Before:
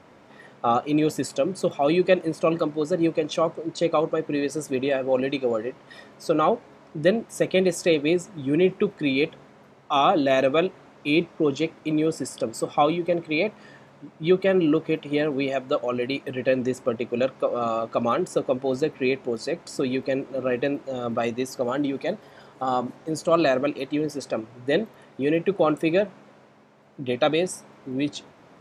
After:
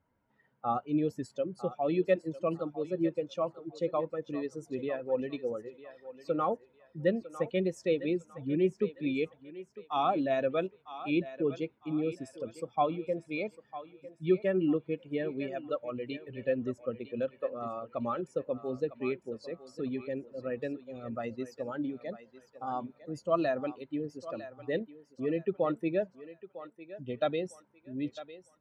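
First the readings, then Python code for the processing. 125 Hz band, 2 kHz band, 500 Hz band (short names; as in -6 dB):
-8.5 dB, -12.5 dB, -9.0 dB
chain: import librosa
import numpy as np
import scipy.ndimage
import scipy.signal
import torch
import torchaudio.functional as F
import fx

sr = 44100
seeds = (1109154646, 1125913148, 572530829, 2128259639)

p1 = fx.bin_expand(x, sr, power=1.5)
p2 = fx.lowpass(p1, sr, hz=1800.0, slope=6)
p3 = p2 + fx.echo_thinned(p2, sr, ms=953, feedback_pct=31, hz=500.0, wet_db=-12.5, dry=0)
y = p3 * 10.0 ** (-5.5 / 20.0)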